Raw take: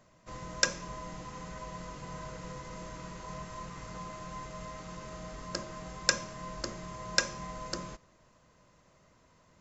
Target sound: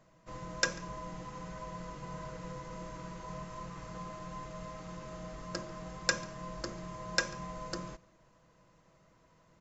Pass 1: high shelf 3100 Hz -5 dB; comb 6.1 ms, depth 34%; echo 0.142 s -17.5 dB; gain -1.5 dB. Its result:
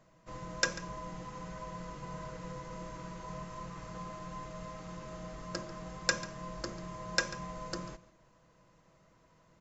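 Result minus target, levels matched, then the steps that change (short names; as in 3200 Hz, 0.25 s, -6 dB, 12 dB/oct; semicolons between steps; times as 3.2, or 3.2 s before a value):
echo-to-direct +7.5 dB
change: echo 0.142 s -25 dB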